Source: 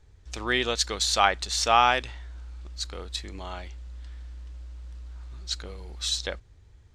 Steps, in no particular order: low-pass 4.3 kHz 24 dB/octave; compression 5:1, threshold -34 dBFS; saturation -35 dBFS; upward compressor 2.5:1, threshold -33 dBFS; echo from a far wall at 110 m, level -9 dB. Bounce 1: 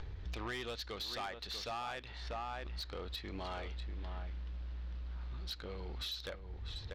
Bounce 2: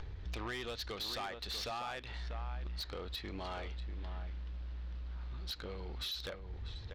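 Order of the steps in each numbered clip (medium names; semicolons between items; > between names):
upward compressor > echo from a far wall > compression > low-pass > saturation; low-pass > compression > upward compressor > echo from a far wall > saturation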